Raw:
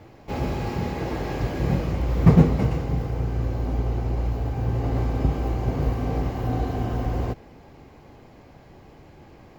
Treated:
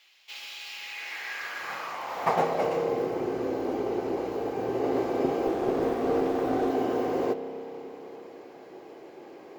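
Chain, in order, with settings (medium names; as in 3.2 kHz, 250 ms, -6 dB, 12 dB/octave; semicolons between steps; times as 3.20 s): spring tank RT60 3.9 s, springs 30 ms, chirp 35 ms, DRR 9.5 dB; high-pass sweep 3.1 kHz -> 380 Hz, 0.67–3.17 s; 5.47–6.70 s: sliding maximum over 9 samples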